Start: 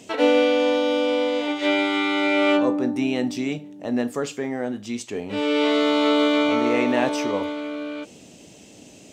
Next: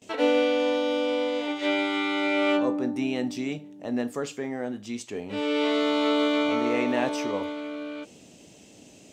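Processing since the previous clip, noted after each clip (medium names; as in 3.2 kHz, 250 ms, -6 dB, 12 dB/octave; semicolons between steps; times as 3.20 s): gate with hold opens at -38 dBFS; trim -4.5 dB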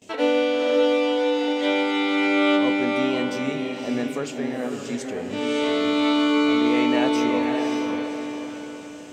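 echo that smears into a reverb 563 ms, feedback 44%, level -3 dB; trim +1.5 dB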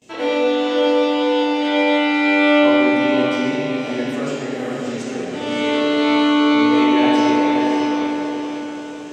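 reverberation RT60 2.0 s, pre-delay 5 ms, DRR -7.5 dB; trim -3.5 dB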